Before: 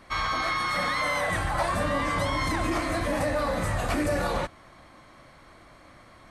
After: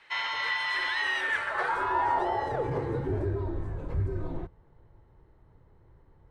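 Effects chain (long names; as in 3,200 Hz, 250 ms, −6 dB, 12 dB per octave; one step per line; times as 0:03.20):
band-pass filter sweep 2,700 Hz → 220 Hz, 0:01.18–0:03.66
frequency shifter −200 Hz
level +5.5 dB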